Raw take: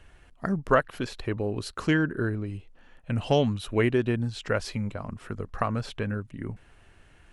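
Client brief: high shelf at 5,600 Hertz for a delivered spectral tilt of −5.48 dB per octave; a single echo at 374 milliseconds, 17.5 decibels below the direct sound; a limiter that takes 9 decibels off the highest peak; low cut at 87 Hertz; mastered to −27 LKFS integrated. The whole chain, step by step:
high-pass filter 87 Hz
high-shelf EQ 5,600 Hz +4 dB
brickwall limiter −16 dBFS
single-tap delay 374 ms −17.5 dB
level +4 dB

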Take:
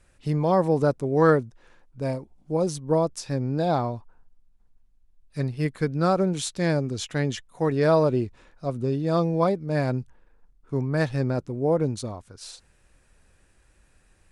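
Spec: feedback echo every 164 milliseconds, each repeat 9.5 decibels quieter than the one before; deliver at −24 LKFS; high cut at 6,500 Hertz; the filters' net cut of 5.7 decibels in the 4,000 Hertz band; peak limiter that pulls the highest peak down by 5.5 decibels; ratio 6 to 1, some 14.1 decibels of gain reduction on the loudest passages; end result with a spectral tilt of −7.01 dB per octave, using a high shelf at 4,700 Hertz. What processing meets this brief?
low-pass filter 6,500 Hz
parametric band 4,000 Hz −3.5 dB
high-shelf EQ 4,700 Hz −5.5 dB
downward compressor 6 to 1, threshold −30 dBFS
brickwall limiter −26.5 dBFS
repeating echo 164 ms, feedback 33%, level −9.5 dB
level +12.5 dB

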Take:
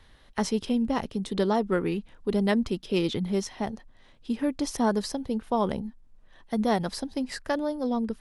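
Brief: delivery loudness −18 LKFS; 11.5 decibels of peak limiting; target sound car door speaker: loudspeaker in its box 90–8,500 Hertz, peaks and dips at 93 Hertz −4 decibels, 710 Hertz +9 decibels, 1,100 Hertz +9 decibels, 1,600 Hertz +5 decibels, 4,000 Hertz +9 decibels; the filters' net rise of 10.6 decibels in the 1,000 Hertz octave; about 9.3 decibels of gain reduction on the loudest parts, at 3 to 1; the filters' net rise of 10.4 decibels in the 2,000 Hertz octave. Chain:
parametric band 1,000 Hz +3 dB
parametric band 2,000 Hz +7 dB
downward compressor 3 to 1, threshold −31 dBFS
brickwall limiter −27.5 dBFS
loudspeaker in its box 90–8,500 Hz, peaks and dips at 93 Hz −4 dB, 710 Hz +9 dB, 1,100 Hz +9 dB, 1,600 Hz +5 dB, 4,000 Hz +9 dB
level +17.5 dB

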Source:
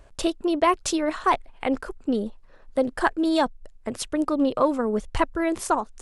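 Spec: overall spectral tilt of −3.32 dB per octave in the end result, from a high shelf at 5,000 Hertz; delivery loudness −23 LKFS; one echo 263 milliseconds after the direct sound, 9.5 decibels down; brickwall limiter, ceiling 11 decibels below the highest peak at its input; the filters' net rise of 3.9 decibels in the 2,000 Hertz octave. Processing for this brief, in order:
parametric band 2,000 Hz +4 dB
high-shelf EQ 5,000 Hz +6.5 dB
brickwall limiter −15 dBFS
single-tap delay 263 ms −9.5 dB
level +3 dB

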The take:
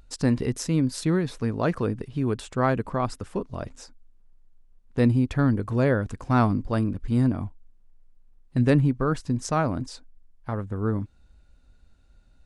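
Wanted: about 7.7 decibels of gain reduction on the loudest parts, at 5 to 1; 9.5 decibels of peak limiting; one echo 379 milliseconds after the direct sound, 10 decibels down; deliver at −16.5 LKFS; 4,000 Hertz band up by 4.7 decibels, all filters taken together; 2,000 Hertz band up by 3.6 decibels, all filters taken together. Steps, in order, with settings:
parametric band 2,000 Hz +4 dB
parametric band 4,000 Hz +5 dB
downward compressor 5 to 1, threshold −24 dBFS
brickwall limiter −22 dBFS
single-tap delay 379 ms −10 dB
level +16 dB

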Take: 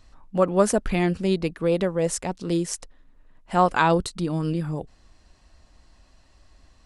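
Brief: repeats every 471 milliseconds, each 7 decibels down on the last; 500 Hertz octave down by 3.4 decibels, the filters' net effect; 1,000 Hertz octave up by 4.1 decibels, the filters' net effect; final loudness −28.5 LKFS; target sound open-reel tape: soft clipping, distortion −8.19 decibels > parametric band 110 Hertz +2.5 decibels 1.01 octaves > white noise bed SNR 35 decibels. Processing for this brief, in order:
parametric band 500 Hz −6.5 dB
parametric band 1,000 Hz +7 dB
repeating echo 471 ms, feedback 45%, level −7 dB
soft clipping −19 dBFS
parametric band 110 Hz +2.5 dB 1.01 octaves
white noise bed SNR 35 dB
level −1.5 dB

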